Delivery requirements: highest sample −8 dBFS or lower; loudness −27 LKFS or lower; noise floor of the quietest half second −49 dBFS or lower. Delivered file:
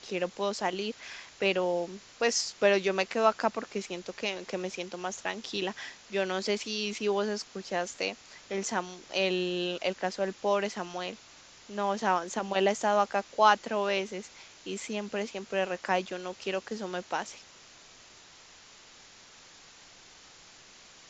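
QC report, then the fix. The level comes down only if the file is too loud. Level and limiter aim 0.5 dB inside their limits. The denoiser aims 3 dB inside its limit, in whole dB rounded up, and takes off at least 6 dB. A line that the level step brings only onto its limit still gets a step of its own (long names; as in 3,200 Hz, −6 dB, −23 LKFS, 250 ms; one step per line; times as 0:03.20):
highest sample −9.0 dBFS: in spec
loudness −31.0 LKFS: in spec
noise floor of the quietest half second −54 dBFS: in spec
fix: no processing needed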